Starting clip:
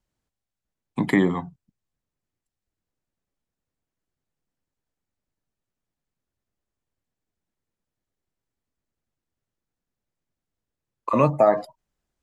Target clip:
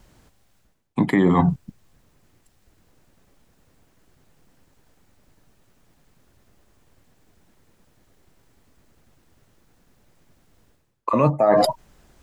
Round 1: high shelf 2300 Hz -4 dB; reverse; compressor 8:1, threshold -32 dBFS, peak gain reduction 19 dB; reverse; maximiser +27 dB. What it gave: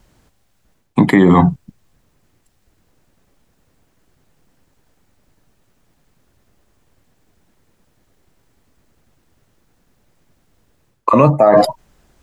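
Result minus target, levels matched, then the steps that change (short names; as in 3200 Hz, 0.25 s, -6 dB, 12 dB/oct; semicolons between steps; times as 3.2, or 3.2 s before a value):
compressor: peak gain reduction -9.5 dB
change: compressor 8:1, threshold -43 dBFS, peak gain reduction 29 dB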